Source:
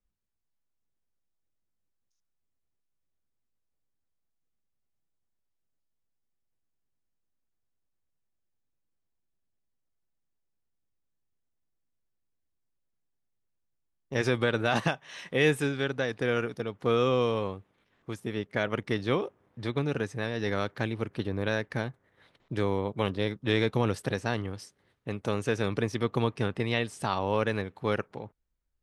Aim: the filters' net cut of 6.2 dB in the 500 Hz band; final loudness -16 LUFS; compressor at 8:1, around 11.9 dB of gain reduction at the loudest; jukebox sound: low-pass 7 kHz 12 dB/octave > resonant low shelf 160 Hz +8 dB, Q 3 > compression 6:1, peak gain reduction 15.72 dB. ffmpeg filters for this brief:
-af "equalizer=f=500:t=o:g=-6,acompressor=threshold=0.0178:ratio=8,lowpass=7000,lowshelf=f=160:t=q:w=3:g=8,acompressor=threshold=0.00891:ratio=6,volume=28.2"

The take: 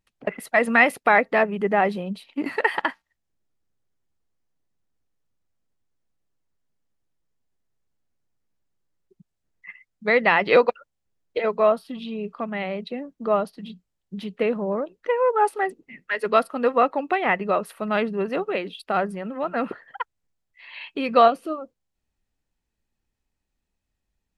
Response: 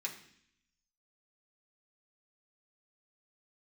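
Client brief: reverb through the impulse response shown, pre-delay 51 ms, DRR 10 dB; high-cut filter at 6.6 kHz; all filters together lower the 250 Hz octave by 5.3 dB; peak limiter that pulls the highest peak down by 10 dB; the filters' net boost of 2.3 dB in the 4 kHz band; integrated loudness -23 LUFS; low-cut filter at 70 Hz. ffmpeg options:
-filter_complex "[0:a]highpass=70,lowpass=6600,equalizer=f=250:t=o:g=-6.5,equalizer=f=4000:t=o:g=3.5,alimiter=limit=0.211:level=0:latency=1,asplit=2[s0][s1];[1:a]atrim=start_sample=2205,adelay=51[s2];[s1][s2]afir=irnorm=-1:irlink=0,volume=0.299[s3];[s0][s3]amix=inputs=2:normalize=0,volume=1.58"

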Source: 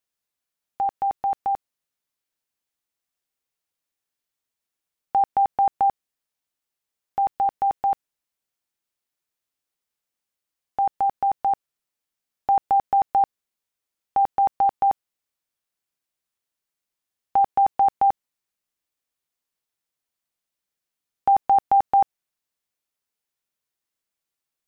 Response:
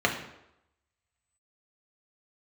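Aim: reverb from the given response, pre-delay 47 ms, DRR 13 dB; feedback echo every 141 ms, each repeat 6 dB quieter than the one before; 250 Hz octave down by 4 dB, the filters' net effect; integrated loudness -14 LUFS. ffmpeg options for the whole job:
-filter_complex "[0:a]equalizer=f=250:t=o:g=-5.5,aecho=1:1:141|282|423|564|705|846:0.501|0.251|0.125|0.0626|0.0313|0.0157,asplit=2[s0][s1];[1:a]atrim=start_sample=2205,adelay=47[s2];[s1][s2]afir=irnorm=-1:irlink=0,volume=0.0447[s3];[s0][s3]amix=inputs=2:normalize=0,volume=2.82"

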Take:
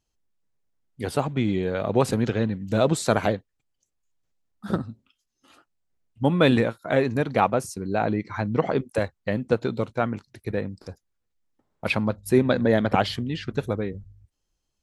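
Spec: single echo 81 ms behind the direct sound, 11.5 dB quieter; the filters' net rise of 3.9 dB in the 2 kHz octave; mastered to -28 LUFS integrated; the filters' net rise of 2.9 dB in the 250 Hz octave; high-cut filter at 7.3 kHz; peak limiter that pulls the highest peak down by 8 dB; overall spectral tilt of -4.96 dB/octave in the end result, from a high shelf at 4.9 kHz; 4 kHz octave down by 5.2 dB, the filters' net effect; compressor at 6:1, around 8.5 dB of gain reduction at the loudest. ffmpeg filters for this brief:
-af "lowpass=7300,equalizer=f=250:t=o:g=3.5,equalizer=f=2000:t=o:g=7.5,equalizer=f=4000:t=o:g=-8,highshelf=f=4900:g=-3,acompressor=threshold=0.1:ratio=6,alimiter=limit=0.168:level=0:latency=1,aecho=1:1:81:0.266,volume=1.12"

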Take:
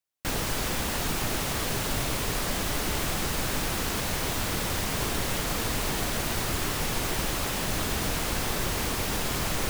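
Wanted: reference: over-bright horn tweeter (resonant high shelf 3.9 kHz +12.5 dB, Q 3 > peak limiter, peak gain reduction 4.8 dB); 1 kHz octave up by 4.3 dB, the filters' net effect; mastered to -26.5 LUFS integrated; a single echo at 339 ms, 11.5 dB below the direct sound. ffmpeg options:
-af "equalizer=f=1000:t=o:g=6.5,highshelf=f=3900:t=q:w=3:g=12.5,aecho=1:1:339:0.266,volume=0.355,alimiter=limit=0.106:level=0:latency=1"

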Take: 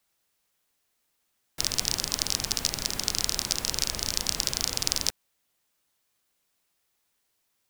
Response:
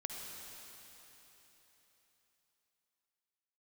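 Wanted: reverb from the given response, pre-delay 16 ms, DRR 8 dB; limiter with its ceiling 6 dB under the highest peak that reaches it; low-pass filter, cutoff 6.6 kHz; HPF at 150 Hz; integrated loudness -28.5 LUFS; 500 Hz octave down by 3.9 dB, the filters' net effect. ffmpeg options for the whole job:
-filter_complex "[0:a]highpass=150,lowpass=6600,equalizer=f=500:t=o:g=-5,alimiter=limit=0.355:level=0:latency=1,asplit=2[s0][s1];[1:a]atrim=start_sample=2205,adelay=16[s2];[s1][s2]afir=irnorm=-1:irlink=0,volume=0.398[s3];[s0][s3]amix=inputs=2:normalize=0,volume=1.33"

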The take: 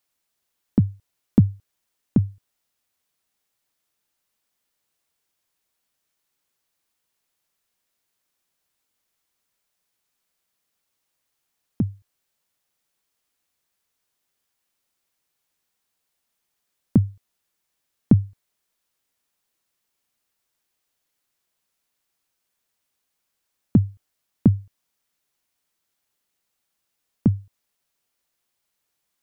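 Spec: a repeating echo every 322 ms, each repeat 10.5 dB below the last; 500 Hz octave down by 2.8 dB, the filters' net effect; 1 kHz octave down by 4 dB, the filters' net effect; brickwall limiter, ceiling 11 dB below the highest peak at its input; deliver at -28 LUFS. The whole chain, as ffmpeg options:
-af "equalizer=f=500:t=o:g=-3.5,equalizer=f=1000:t=o:g=-4,alimiter=limit=0.158:level=0:latency=1,aecho=1:1:322|644|966:0.299|0.0896|0.0269,volume=1.41"

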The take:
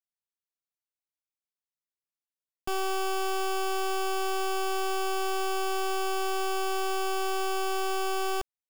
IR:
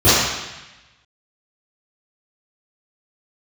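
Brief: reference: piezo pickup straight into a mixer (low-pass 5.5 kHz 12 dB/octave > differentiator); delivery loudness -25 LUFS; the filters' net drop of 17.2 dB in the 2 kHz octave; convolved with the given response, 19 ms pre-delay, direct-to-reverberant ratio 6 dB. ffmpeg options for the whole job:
-filter_complex "[0:a]equalizer=f=2000:t=o:g=-9,asplit=2[s0][s1];[1:a]atrim=start_sample=2205,adelay=19[s2];[s1][s2]afir=irnorm=-1:irlink=0,volume=0.0224[s3];[s0][s3]amix=inputs=2:normalize=0,lowpass=5500,aderivative,volume=9.44"

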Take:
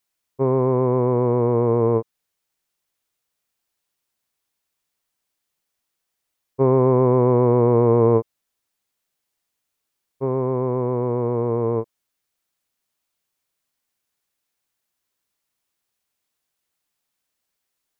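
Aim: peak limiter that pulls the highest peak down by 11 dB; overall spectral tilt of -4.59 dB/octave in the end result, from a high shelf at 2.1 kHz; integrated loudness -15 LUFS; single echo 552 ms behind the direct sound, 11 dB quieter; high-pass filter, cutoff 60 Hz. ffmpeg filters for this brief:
-af "highpass=60,highshelf=f=2100:g=-7.5,alimiter=limit=0.158:level=0:latency=1,aecho=1:1:552:0.282,volume=3.98"

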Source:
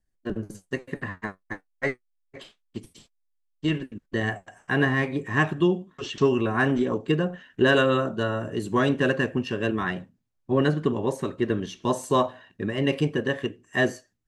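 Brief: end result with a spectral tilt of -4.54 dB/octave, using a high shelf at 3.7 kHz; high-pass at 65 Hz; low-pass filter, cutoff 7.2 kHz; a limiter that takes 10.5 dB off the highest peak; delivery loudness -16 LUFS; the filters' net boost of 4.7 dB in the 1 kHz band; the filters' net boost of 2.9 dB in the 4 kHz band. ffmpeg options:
-af "highpass=65,lowpass=7200,equalizer=f=1000:t=o:g=5.5,highshelf=f=3700:g=-4.5,equalizer=f=4000:t=o:g=7,volume=4.22,alimiter=limit=0.668:level=0:latency=1"

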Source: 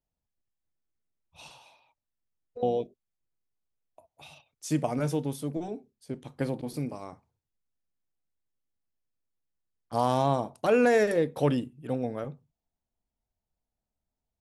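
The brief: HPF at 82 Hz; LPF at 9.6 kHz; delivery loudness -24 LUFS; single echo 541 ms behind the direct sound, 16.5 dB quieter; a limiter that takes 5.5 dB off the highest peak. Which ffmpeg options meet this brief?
-af "highpass=82,lowpass=9600,alimiter=limit=0.141:level=0:latency=1,aecho=1:1:541:0.15,volume=2.24"

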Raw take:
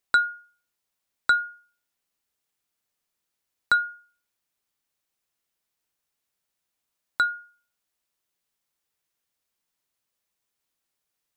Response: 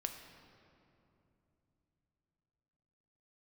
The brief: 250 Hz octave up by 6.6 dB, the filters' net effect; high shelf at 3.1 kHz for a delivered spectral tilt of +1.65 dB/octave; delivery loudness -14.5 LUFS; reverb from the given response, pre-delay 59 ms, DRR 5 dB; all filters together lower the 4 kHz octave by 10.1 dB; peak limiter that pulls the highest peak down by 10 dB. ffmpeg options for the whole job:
-filter_complex "[0:a]equalizer=f=250:t=o:g=8.5,highshelf=f=3100:g=-7.5,equalizer=f=4000:t=o:g=-5.5,alimiter=limit=0.0891:level=0:latency=1,asplit=2[s0][s1];[1:a]atrim=start_sample=2205,adelay=59[s2];[s1][s2]afir=irnorm=-1:irlink=0,volume=0.596[s3];[s0][s3]amix=inputs=2:normalize=0,volume=7.5"

